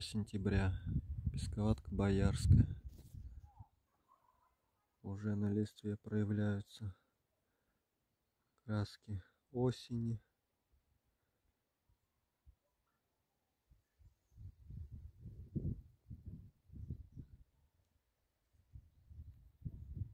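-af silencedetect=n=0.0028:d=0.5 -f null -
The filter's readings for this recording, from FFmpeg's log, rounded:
silence_start: 3.62
silence_end: 5.04 | silence_duration: 1.42
silence_start: 6.92
silence_end: 8.68 | silence_duration: 1.76
silence_start: 10.17
silence_end: 14.40 | silence_duration: 4.23
silence_start: 17.34
silence_end: 18.75 | silence_duration: 1.41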